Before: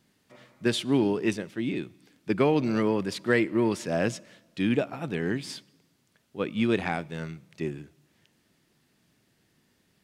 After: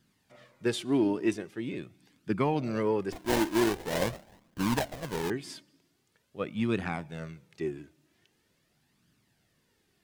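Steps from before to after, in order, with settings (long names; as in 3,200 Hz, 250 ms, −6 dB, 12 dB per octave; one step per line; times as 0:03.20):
dynamic equaliser 3,400 Hz, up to −4 dB, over −50 dBFS, Q 1
0:03.12–0:05.30: sample-rate reduction 1,300 Hz, jitter 20%
flanger 0.44 Hz, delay 0.6 ms, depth 2.8 ms, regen +35%
level +1 dB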